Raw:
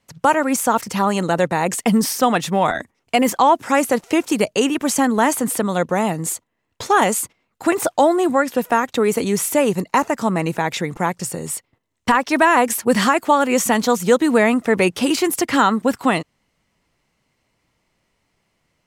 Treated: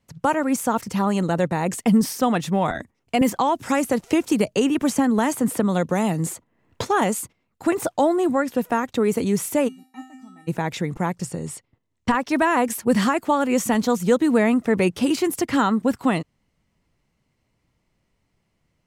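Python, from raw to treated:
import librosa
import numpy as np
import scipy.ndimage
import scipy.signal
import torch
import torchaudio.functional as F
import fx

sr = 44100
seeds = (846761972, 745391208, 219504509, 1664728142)

y = fx.band_squash(x, sr, depth_pct=70, at=(3.21, 6.85))
y = fx.comb_fb(y, sr, f0_hz=260.0, decay_s=0.46, harmonics='odd', damping=0.0, mix_pct=100, at=(9.67, 10.47), fade=0.02)
y = fx.lowpass(y, sr, hz=8900.0, slope=12, at=(11.25, 12.14))
y = fx.low_shelf(y, sr, hz=310.0, db=10.0)
y = y * librosa.db_to_amplitude(-7.0)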